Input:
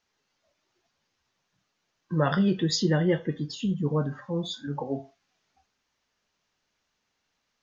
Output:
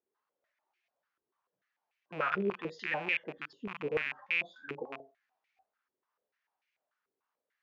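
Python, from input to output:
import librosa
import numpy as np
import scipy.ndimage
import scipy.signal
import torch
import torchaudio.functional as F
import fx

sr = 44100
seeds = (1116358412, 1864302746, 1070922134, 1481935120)

y = fx.rattle_buzz(x, sr, strikes_db=-32.0, level_db=-16.0)
y = fx.filter_held_bandpass(y, sr, hz=6.8, low_hz=390.0, high_hz=2300.0)
y = y * librosa.db_to_amplitude(1.5)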